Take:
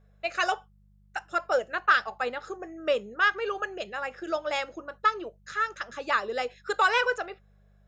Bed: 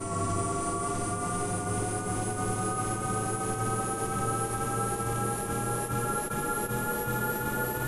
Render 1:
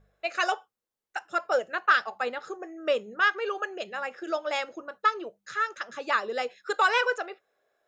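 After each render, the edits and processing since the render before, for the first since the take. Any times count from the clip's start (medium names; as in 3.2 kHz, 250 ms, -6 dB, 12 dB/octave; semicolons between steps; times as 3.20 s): de-hum 50 Hz, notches 4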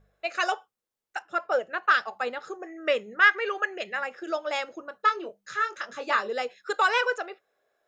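1.22–1.83 s: tone controls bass -1 dB, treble -8 dB; 2.66–4.04 s: peaking EQ 2 kHz +12 dB 0.52 oct; 4.97–6.33 s: doubling 24 ms -6 dB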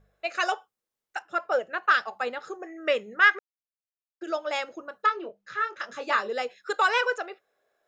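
3.39–4.21 s: mute; 5.06–5.80 s: distance through air 160 m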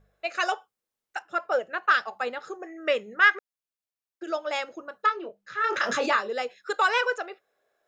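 5.64–6.16 s: level flattener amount 70%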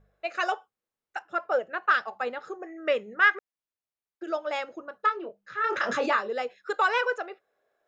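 treble shelf 3.3 kHz -9 dB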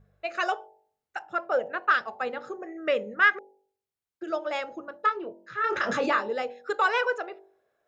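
peaking EQ 100 Hz +9 dB 2.3 oct; de-hum 48.45 Hz, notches 20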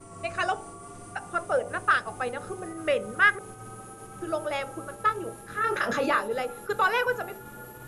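add bed -13 dB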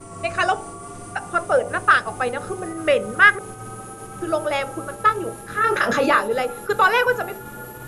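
trim +7.5 dB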